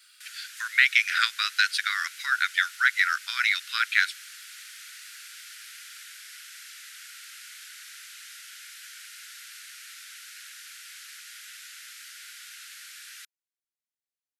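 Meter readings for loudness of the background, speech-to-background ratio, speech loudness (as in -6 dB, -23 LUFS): -42.5 LUFS, 19.0 dB, -23.5 LUFS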